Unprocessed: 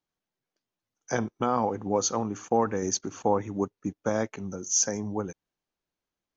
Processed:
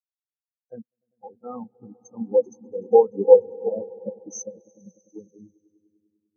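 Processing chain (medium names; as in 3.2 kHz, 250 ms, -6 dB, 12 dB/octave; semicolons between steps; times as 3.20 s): slices played last to first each 205 ms, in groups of 3; echo with a slow build-up 99 ms, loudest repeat 5, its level -9.5 dB; spectral contrast expander 4:1; trim +8.5 dB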